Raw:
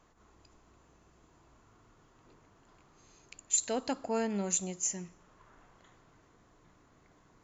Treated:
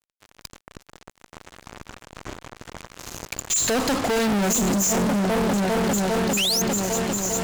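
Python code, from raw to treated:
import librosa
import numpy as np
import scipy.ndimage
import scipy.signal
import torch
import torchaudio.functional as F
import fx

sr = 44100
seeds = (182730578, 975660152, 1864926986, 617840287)

y = fx.echo_opening(x, sr, ms=400, hz=200, octaves=1, feedback_pct=70, wet_db=-3)
y = fx.spec_paint(y, sr, seeds[0], shape='rise', start_s=6.37, length_s=0.25, low_hz=2400.0, high_hz=6800.0, level_db=-43.0)
y = fx.fuzz(y, sr, gain_db=56.0, gate_db=-55.0)
y = y * 10.0 ** (-7.0 / 20.0)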